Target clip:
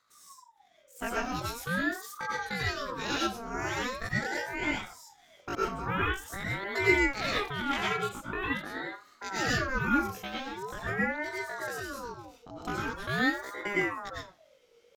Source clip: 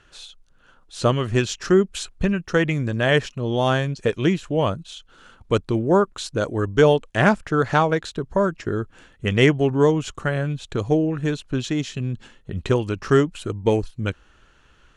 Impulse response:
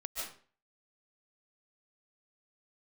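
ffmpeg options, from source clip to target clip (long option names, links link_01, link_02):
-filter_complex "[0:a]asetrate=83250,aresample=44100,atempo=0.529732[link_01];[1:a]atrim=start_sample=2205,asetrate=61740,aresample=44100[link_02];[link_01][link_02]afir=irnorm=-1:irlink=0,aeval=exprs='val(0)*sin(2*PI*850*n/s+850*0.45/0.44*sin(2*PI*0.44*n/s))':channel_layout=same,volume=-6.5dB"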